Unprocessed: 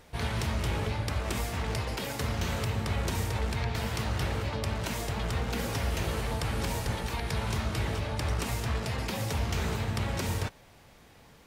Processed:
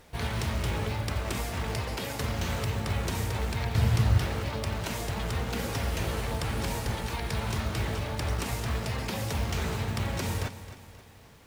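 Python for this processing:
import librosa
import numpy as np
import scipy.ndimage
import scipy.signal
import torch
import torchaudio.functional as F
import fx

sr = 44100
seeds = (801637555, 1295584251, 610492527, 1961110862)

y = fx.echo_feedback(x, sr, ms=266, feedback_pct=48, wet_db=-14.0)
y = fx.quant_companded(y, sr, bits=6)
y = fx.peak_eq(y, sr, hz=100.0, db=12.0, octaves=1.6, at=(3.75, 4.18))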